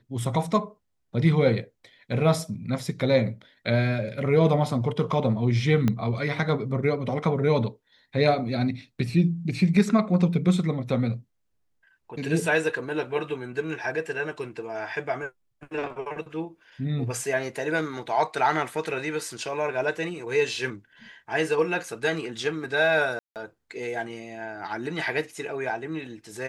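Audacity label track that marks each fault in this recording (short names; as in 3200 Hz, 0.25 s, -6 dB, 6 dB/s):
5.880000	5.880000	pop -12 dBFS
23.190000	23.360000	gap 0.168 s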